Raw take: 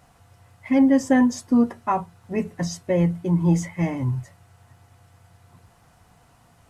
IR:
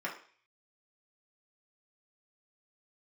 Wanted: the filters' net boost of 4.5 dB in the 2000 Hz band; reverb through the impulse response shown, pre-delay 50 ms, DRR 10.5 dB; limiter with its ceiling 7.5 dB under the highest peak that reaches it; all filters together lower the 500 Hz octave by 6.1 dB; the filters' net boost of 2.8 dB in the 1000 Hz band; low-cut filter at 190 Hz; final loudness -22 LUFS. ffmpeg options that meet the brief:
-filter_complex "[0:a]highpass=190,equalizer=f=500:t=o:g=-8.5,equalizer=f=1k:t=o:g=5.5,equalizer=f=2k:t=o:g=4,alimiter=limit=-15.5dB:level=0:latency=1,asplit=2[a][b];[1:a]atrim=start_sample=2205,adelay=50[c];[b][c]afir=irnorm=-1:irlink=0,volume=-15dB[d];[a][d]amix=inputs=2:normalize=0,volume=4.5dB"

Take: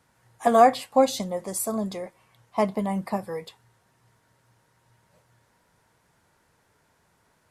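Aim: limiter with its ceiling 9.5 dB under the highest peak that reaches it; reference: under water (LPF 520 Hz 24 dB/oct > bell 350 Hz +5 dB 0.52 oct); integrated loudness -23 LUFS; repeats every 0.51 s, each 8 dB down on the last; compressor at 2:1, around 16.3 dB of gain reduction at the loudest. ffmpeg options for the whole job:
-af "acompressor=threshold=-42dB:ratio=2,alimiter=level_in=6.5dB:limit=-24dB:level=0:latency=1,volume=-6.5dB,lowpass=f=520:w=0.5412,lowpass=f=520:w=1.3066,equalizer=f=350:t=o:w=0.52:g=5,aecho=1:1:510|1020|1530|2040|2550:0.398|0.159|0.0637|0.0255|0.0102,volume=20dB"

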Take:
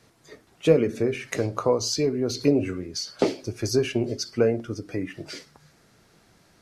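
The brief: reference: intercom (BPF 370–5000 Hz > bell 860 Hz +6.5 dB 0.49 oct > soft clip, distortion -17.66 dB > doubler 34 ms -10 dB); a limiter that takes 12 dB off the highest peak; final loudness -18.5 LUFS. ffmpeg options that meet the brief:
-filter_complex "[0:a]alimiter=limit=-17.5dB:level=0:latency=1,highpass=370,lowpass=5k,equalizer=f=860:t=o:w=0.49:g=6.5,asoftclip=threshold=-22.5dB,asplit=2[a][b];[b]adelay=34,volume=-10dB[c];[a][c]amix=inputs=2:normalize=0,volume=14.5dB"

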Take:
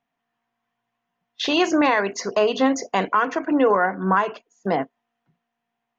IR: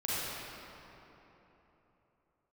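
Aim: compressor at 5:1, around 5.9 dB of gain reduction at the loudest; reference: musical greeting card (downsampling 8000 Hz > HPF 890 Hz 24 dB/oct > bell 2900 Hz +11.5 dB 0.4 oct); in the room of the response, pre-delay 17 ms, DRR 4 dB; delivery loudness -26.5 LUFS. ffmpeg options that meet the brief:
-filter_complex "[0:a]acompressor=threshold=-20dB:ratio=5,asplit=2[a][b];[1:a]atrim=start_sample=2205,adelay=17[c];[b][c]afir=irnorm=-1:irlink=0,volume=-11.5dB[d];[a][d]amix=inputs=2:normalize=0,aresample=8000,aresample=44100,highpass=f=890:w=0.5412,highpass=f=890:w=1.3066,equalizer=f=2.9k:t=o:w=0.4:g=11.5,volume=-1dB"

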